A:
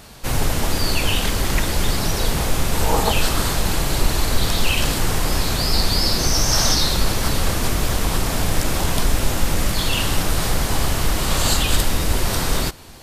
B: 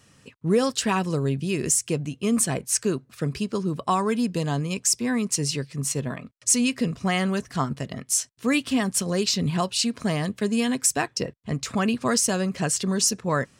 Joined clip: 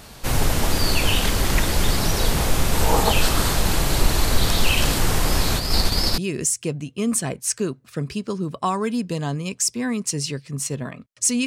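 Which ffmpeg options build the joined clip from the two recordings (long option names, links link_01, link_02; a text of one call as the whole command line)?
ffmpeg -i cue0.wav -i cue1.wav -filter_complex "[0:a]asplit=3[link_01][link_02][link_03];[link_01]afade=type=out:start_time=5.58:duration=0.02[link_04];[link_02]agate=range=-33dB:threshold=-15dB:ratio=3:release=100:detection=peak,afade=type=in:start_time=5.58:duration=0.02,afade=type=out:start_time=6.18:duration=0.02[link_05];[link_03]afade=type=in:start_time=6.18:duration=0.02[link_06];[link_04][link_05][link_06]amix=inputs=3:normalize=0,apad=whole_dur=11.46,atrim=end=11.46,atrim=end=6.182[link_07];[1:a]atrim=start=1.428:end=6.71[link_08];[link_07][link_08]acrossfade=duration=0.004:curve1=hsin:curve2=hsin" out.wav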